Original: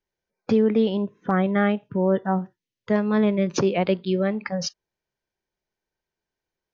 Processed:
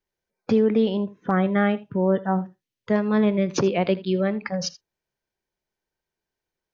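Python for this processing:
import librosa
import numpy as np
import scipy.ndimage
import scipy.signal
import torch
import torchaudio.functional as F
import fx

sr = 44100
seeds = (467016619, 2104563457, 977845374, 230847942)

y = x + 10.0 ** (-18.5 / 20.0) * np.pad(x, (int(80 * sr / 1000.0), 0))[:len(x)]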